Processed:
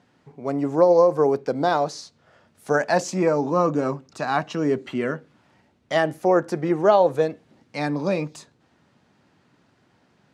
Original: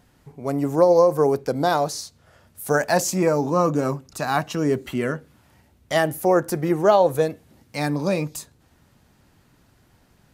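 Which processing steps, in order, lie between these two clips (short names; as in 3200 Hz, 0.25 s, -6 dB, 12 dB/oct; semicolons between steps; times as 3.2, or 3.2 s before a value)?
HPF 160 Hz 12 dB/oct; air absorption 100 m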